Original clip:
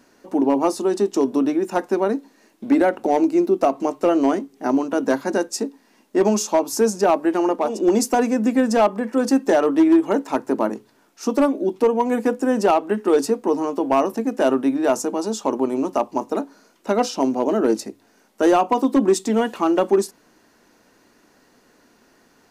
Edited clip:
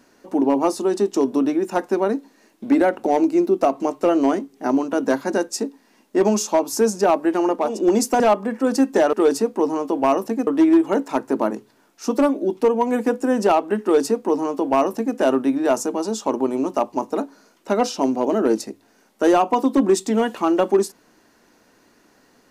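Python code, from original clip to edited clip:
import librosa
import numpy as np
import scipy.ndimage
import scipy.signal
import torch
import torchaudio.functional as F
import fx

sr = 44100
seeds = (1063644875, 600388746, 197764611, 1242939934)

y = fx.edit(x, sr, fx.cut(start_s=8.2, length_s=0.53),
    fx.duplicate(start_s=13.01, length_s=1.34, to_s=9.66), tone=tone)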